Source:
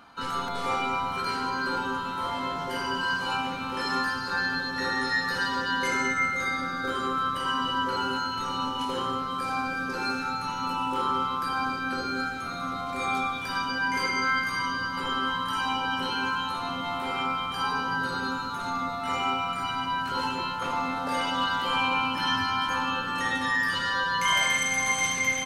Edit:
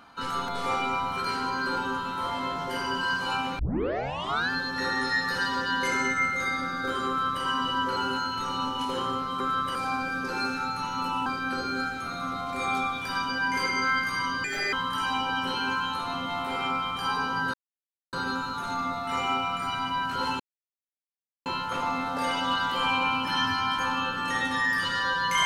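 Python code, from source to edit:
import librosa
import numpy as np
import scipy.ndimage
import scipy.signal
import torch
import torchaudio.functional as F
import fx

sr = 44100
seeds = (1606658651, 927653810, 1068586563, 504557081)

y = fx.edit(x, sr, fx.tape_start(start_s=3.59, length_s=0.91),
    fx.duplicate(start_s=7.08, length_s=0.35, to_s=9.4),
    fx.cut(start_s=10.91, length_s=0.75),
    fx.speed_span(start_s=14.84, length_s=0.44, speed=1.53),
    fx.insert_silence(at_s=18.09, length_s=0.59),
    fx.insert_silence(at_s=20.36, length_s=1.06), tone=tone)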